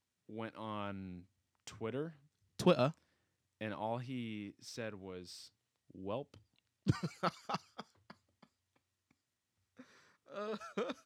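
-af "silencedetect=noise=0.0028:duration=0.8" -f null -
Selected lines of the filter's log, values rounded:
silence_start: 8.44
silence_end: 9.79 | silence_duration: 1.36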